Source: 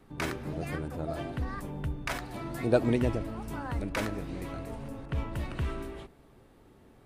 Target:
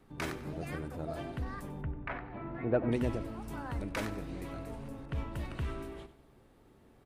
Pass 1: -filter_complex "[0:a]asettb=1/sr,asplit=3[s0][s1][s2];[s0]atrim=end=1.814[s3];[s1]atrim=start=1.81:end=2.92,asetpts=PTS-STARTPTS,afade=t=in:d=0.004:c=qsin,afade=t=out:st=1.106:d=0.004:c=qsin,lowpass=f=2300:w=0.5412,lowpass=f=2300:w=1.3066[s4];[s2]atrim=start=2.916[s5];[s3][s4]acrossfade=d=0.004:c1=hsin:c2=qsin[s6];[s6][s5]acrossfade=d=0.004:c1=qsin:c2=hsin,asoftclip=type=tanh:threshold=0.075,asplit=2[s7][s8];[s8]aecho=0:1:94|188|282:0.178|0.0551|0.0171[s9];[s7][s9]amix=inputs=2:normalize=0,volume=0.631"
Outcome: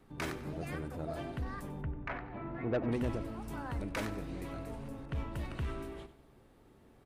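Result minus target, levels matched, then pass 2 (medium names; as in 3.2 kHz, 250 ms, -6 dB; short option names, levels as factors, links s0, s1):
saturation: distortion +12 dB
-filter_complex "[0:a]asettb=1/sr,asplit=3[s0][s1][s2];[s0]atrim=end=1.814[s3];[s1]atrim=start=1.81:end=2.92,asetpts=PTS-STARTPTS,afade=t=in:d=0.004:c=qsin,afade=t=out:st=1.106:d=0.004:c=qsin,lowpass=f=2300:w=0.5412,lowpass=f=2300:w=1.3066[s4];[s2]atrim=start=2.916[s5];[s3][s4]acrossfade=d=0.004:c1=hsin:c2=qsin[s6];[s6][s5]acrossfade=d=0.004:c1=qsin:c2=hsin,asoftclip=type=tanh:threshold=0.224,asplit=2[s7][s8];[s8]aecho=0:1:94|188|282:0.178|0.0551|0.0171[s9];[s7][s9]amix=inputs=2:normalize=0,volume=0.631"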